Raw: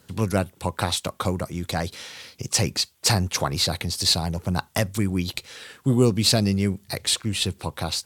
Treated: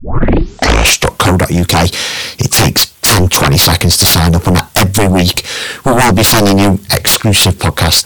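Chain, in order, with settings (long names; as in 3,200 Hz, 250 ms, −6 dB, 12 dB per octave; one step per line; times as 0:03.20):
turntable start at the beginning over 1.27 s
sine wavefolder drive 17 dB, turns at −5.5 dBFS
level +1.5 dB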